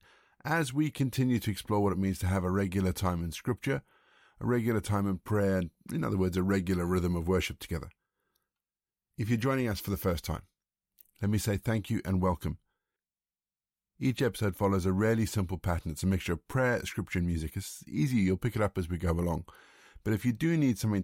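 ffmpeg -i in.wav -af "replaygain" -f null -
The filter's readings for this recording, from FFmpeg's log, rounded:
track_gain = +12.1 dB
track_peak = 0.116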